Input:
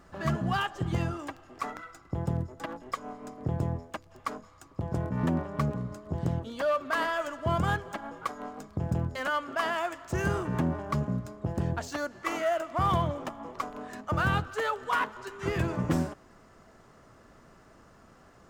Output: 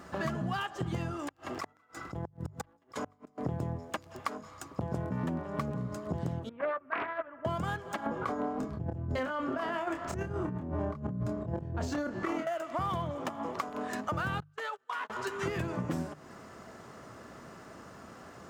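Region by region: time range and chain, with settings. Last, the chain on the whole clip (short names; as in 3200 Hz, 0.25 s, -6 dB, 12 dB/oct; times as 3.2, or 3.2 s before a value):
1.28–3.38 echo 0.182 s -14.5 dB + negative-ratio compressor -39 dBFS + flipped gate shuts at -30 dBFS, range -36 dB
6.49–7.45 steep low-pass 2300 Hz + gate -30 dBFS, range -14 dB + Doppler distortion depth 0.47 ms
8.06–12.47 tilt -3 dB/oct + negative-ratio compressor -33 dBFS + doubler 27 ms -6 dB
14.4–15.1 gate -33 dBFS, range -36 dB + weighting filter A + compressor 4:1, threshold -42 dBFS
whole clip: HPF 86 Hz; notches 50/100/150 Hz; compressor 6:1, threshold -39 dBFS; gain +7.5 dB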